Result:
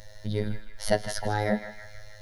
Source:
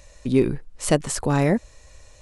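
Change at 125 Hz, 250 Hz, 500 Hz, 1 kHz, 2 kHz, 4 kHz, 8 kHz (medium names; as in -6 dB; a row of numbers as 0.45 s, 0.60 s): -7.5 dB, -10.5 dB, -6.5 dB, -2.5 dB, -2.0 dB, -2.5 dB, -10.0 dB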